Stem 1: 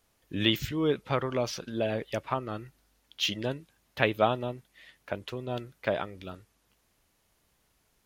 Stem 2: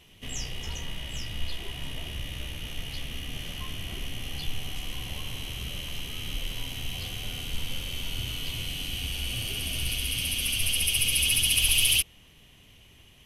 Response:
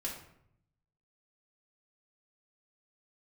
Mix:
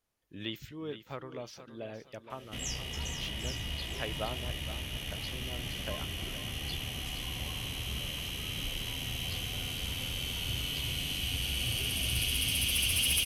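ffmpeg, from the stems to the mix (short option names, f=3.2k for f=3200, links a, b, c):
-filter_complex "[0:a]volume=-13dB,asplit=2[a][b];[b]volume=-12dB[c];[1:a]highpass=44,volume=22dB,asoftclip=hard,volume=-22dB,adelay=2300,volume=-1dB,asplit=2[d][e];[e]volume=-8.5dB[f];[c][f]amix=inputs=2:normalize=0,aecho=0:1:469|938|1407|1876:1|0.3|0.09|0.027[g];[a][d][g]amix=inputs=3:normalize=0"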